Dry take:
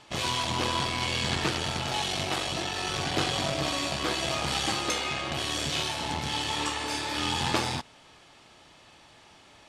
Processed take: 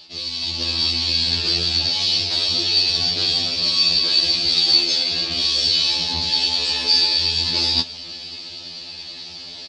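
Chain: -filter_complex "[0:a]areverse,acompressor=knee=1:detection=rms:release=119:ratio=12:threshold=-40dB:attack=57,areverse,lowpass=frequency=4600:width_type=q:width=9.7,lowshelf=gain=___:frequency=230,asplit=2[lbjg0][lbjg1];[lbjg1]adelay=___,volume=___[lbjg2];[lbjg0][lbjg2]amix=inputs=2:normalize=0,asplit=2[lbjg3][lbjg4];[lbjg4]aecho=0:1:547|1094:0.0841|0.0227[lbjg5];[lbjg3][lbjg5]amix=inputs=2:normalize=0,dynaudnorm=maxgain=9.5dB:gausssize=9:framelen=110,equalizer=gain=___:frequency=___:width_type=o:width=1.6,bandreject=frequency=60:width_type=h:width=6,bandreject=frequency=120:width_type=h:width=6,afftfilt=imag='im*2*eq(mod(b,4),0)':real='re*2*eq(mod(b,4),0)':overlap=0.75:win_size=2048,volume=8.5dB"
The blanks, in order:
-6, 24, -12dB, -13.5, 1200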